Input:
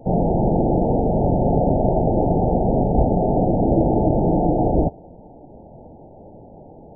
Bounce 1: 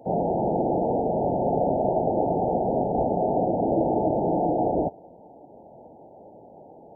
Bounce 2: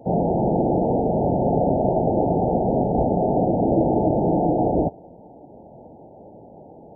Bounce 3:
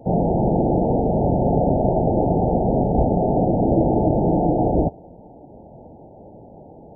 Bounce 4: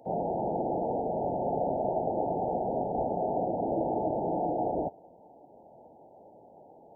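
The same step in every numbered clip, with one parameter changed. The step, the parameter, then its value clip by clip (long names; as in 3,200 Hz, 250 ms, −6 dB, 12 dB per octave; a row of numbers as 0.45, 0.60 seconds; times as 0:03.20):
high-pass filter, corner frequency: 530, 170, 47, 1,500 Hertz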